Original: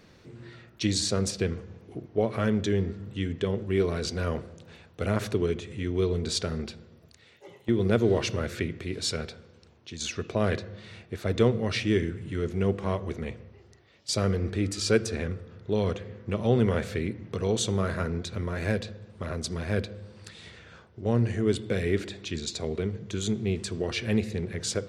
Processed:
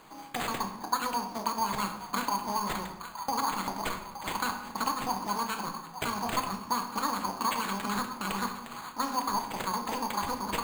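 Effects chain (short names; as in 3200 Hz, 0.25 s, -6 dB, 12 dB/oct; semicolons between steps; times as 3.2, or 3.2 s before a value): high shelf 5300 Hz +11 dB; speed mistake 33 rpm record played at 78 rpm; in parallel at -5 dB: companded quantiser 4-bit; on the sum: compressor, threshold -25 dBFS, peak gain reduction 11.5 dB; graphic EQ 125/500/1000/8000 Hz -5/-10/+7/-7 dB; band-limited delay 0.869 s, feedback 49%, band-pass 1400 Hz, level -10.5 dB; sample-and-hold 8×; reverb RT60 0.90 s, pre-delay 6 ms, DRR 4.5 dB; gain -4 dB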